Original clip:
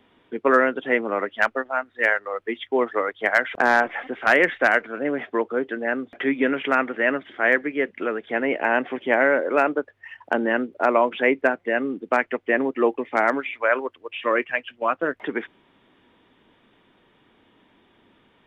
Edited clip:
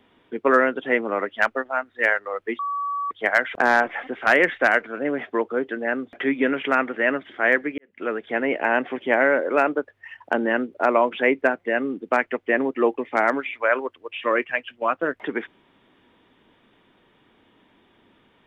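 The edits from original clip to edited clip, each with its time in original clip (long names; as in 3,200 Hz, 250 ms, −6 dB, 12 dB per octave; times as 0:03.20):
0:02.59–0:03.11: beep over 1,140 Hz −23.5 dBFS
0:07.78–0:08.09: fade in quadratic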